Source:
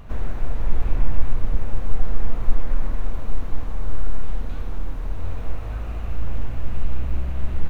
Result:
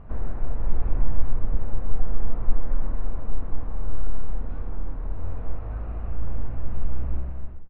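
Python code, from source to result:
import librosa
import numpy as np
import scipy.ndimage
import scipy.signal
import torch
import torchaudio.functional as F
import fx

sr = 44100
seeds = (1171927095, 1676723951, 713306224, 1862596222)

y = fx.fade_out_tail(x, sr, length_s=0.58)
y = scipy.signal.sosfilt(scipy.signal.butter(2, 1400.0, 'lowpass', fs=sr, output='sos'), y)
y = F.gain(torch.from_numpy(y), -2.5).numpy()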